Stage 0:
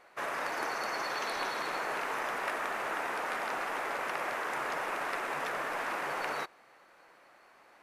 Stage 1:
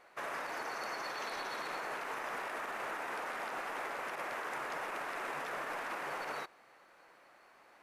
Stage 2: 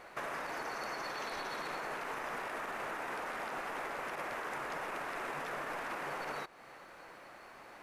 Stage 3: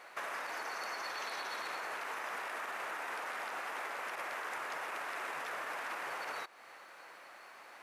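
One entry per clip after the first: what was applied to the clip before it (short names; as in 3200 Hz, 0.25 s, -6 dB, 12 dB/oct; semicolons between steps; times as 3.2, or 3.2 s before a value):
limiter -29 dBFS, peak gain reduction 10.5 dB; gain -2 dB
compressor 2.5:1, threshold -50 dBFS, peak gain reduction 9 dB; low shelf 200 Hz +9.5 dB; gain +8 dB
HPF 940 Hz 6 dB/oct; gain +2 dB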